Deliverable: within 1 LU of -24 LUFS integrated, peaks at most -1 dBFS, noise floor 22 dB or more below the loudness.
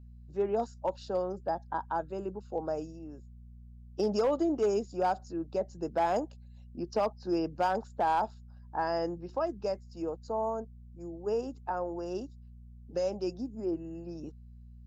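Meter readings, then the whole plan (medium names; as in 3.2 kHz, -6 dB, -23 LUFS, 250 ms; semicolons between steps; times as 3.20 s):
clipped samples 0.4%; clipping level -21.5 dBFS; hum 60 Hz; highest harmonic 240 Hz; hum level -48 dBFS; loudness -33.5 LUFS; peak level -21.5 dBFS; loudness target -24.0 LUFS
-> clip repair -21.5 dBFS; de-hum 60 Hz, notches 4; trim +9.5 dB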